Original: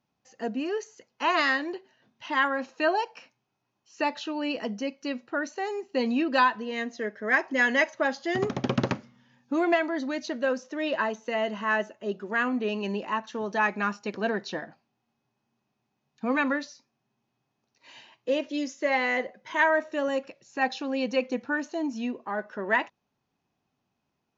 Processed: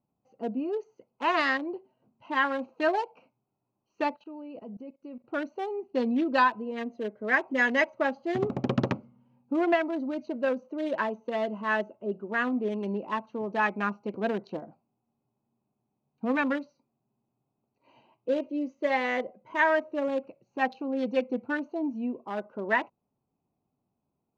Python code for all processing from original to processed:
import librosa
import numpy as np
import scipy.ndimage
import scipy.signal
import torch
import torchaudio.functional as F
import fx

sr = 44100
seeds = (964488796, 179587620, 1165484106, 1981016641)

y = fx.chain(x, sr, fx.high_shelf(hz=4800.0, db=-4.0),
    fx.level_steps(step_db=20), at=(4.16, 5.25))
y = fx.wiener(y, sr, points=25)
y = fx.high_shelf(y, sr, hz=5900.0, db=-10.5)